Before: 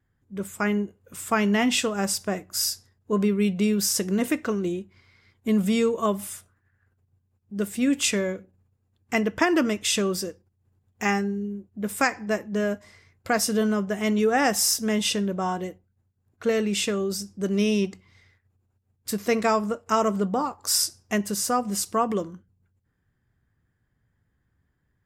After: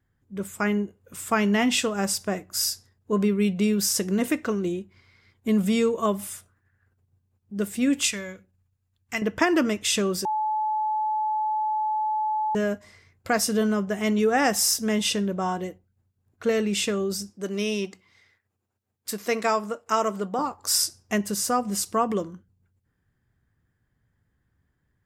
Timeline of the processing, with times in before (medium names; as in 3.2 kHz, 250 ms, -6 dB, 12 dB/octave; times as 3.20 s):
8.07–9.22 s: peaking EQ 380 Hz -12.5 dB 2.8 oct
10.25–12.55 s: bleep 861 Hz -22.5 dBFS
17.30–20.39 s: high-pass 400 Hz 6 dB/octave